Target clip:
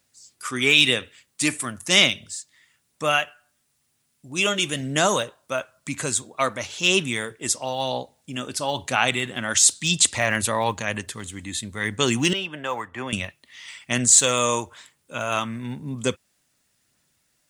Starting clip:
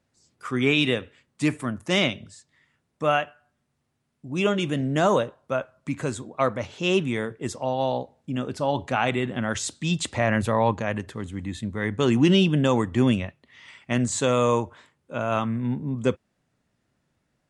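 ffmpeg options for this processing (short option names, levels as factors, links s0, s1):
-filter_complex "[0:a]asettb=1/sr,asplit=3[s0][s1][s2];[s0]atrim=end=12.334[s3];[s1]atrim=start=12.33:end=13.13,asetpts=PTS-STARTPTS,afade=t=in:d=0.004:c=qsin,afade=t=out:st=0.796:d=0.004:c=qsin,acrossover=split=540 2200:gain=0.178 1 0.0708[s4][s5][s6];[s4][s5][s6]amix=inputs=3:normalize=0[s7];[s2]atrim=start=13.126[s8];[s3][s7]acrossfade=d=0.004:c1=hsin:c2=qsin[s9];[s9][s8]acrossfade=d=0.004:c1=qsin:c2=hsin,aphaser=in_gain=1:out_gain=1:delay=3.4:decay=0.22:speed=1:type=sinusoidal,crystalizer=i=10:c=0,volume=0.562"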